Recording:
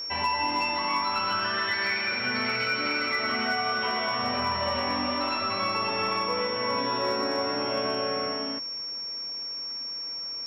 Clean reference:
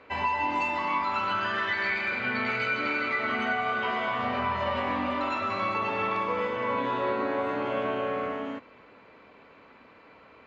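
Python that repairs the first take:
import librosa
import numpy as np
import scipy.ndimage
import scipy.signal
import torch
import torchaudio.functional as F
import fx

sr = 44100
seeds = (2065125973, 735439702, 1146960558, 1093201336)

y = fx.fix_declip(x, sr, threshold_db=-18.5)
y = fx.notch(y, sr, hz=5500.0, q=30.0)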